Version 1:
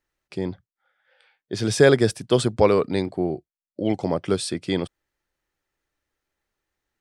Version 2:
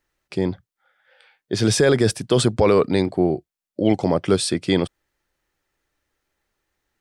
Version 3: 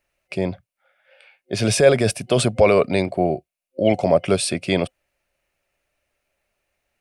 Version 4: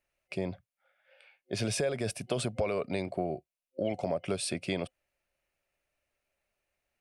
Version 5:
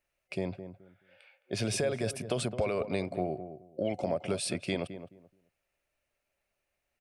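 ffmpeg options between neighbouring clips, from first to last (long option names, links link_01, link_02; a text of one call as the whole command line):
ffmpeg -i in.wav -af "alimiter=limit=-12dB:level=0:latency=1:release=18,volume=5.5dB" out.wav
ffmpeg -i in.wav -af "superequalizer=6b=0.631:8b=2.82:12b=2.51:16b=1.58,volume=-1dB" out.wav
ffmpeg -i in.wav -af "acompressor=threshold=-19dB:ratio=6,volume=-8.5dB" out.wav
ffmpeg -i in.wav -filter_complex "[0:a]asplit=2[link_01][link_02];[link_02]adelay=214,lowpass=frequency=1000:poles=1,volume=-10dB,asplit=2[link_03][link_04];[link_04]adelay=214,lowpass=frequency=1000:poles=1,volume=0.22,asplit=2[link_05][link_06];[link_06]adelay=214,lowpass=frequency=1000:poles=1,volume=0.22[link_07];[link_01][link_03][link_05][link_07]amix=inputs=4:normalize=0" out.wav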